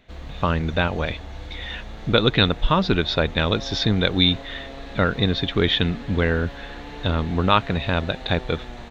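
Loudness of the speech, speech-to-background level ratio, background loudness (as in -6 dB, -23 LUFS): -22.0 LUFS, 16.0 dB, -38.0 LUFS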